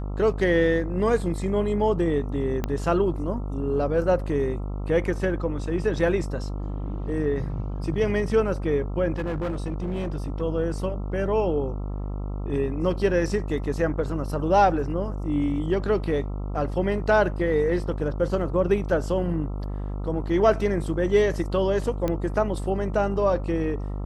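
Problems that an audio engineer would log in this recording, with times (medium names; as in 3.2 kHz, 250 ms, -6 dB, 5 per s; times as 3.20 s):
buzz 50 Hz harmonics 27 -30 dBFS
2.64 s: pop -13 dBFS
9.18–10.42 s: clipped -24 dBFS
22.08 s: pop -14 dBFS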